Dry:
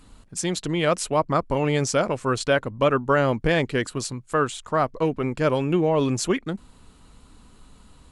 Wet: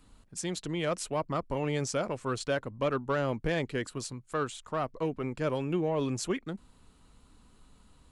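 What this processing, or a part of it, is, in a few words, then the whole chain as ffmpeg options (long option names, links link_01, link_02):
one-band saturation: -filter_complex "[0:a]acrossover=split=520|3800[link_01][link_02][link_03];[link_02]asoftclip=type=tanh:threshold=-17dB[link_04];[link_01][link_04][link_03]amix=inputs=3:normalize=0,volume=-8.5dB"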